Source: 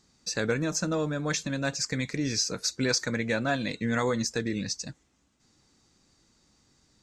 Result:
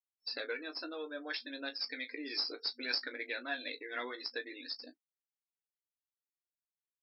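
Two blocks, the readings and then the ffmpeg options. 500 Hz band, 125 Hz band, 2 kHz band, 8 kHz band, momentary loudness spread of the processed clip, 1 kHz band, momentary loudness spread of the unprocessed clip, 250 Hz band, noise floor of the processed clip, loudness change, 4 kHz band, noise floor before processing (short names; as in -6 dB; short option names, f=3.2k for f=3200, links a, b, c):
-13.0 dB, under -40 dB, -7.0 dB, under -40 dB, 7 LU, -12.0 dB, 4 LU, -17.5 dB, under -85 dBFS, -10.0 dB, -5.0 dB, -69 dBFS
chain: -filter_complex "[0:a]aphaser=in_gain=1:out_gain=1:delay=3.1:decay=0.41:speed=0.62:type=triangular,afftfilt=real='re*gte(hypot(re,im),0.00447)':imag='im*gte(hypot(re,im),0.00447)':win_size=1024:overlap=0.75,afftdn=nr=32:nf=-42,equalizer=f=1.1k:w=1.3:g=-6.5,acrossover=split=970[a][b];[a]acompressor=threshold=-38dB:ratio=4[c];[b]aeval=exprs='0.224*(cos(1*acos(clip(val(0)/0.224,-1,1)))-cos(1*PI/2))+0.0562*(cos(2*acos(clip(val(0)/0.224,-1,1)))-cos(2*PI/2))+0.00562*(cos(4*acos(clip(val(0)/0.224,-1,1)))-cos(4*PI/2))':c=same[d];[c][d]amix=inputs=2:normalize=0,afftfilt=real='re*between(b*sr/4096,240,5400)':imag='im*between(b*sr/4096,240,5400)':win_size=4096:overlap=0.75,aecho=1:1:17|35:0.398|0.141,volume=-5dB" -ar 48000 -c:a libopus -b:a 128k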